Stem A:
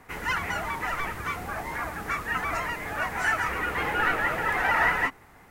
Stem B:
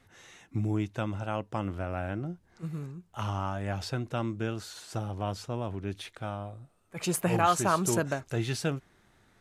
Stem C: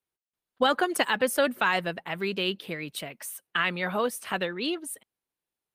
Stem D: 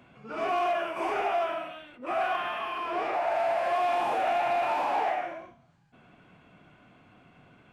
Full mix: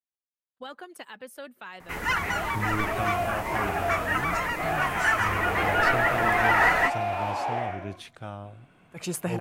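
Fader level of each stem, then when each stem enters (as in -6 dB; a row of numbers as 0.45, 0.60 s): +2.0, -2.0, -17.5, -2.0 dB; 1.80, 2.00, 0.00, 2.50 s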